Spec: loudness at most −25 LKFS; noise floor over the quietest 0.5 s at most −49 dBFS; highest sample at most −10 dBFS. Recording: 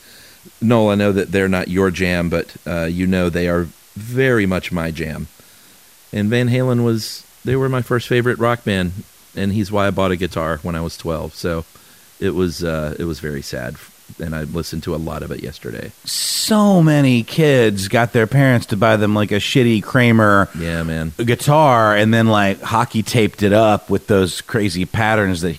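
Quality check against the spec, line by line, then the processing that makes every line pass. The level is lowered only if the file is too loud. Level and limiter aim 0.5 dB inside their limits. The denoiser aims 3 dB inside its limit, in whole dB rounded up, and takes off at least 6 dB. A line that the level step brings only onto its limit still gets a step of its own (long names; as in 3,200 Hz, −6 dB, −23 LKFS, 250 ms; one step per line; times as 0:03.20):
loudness −17.0 LKFS: out of spec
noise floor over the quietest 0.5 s −46 dBFS: out of spec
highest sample −2.5 dBFS: out of spec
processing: level −8.5 dB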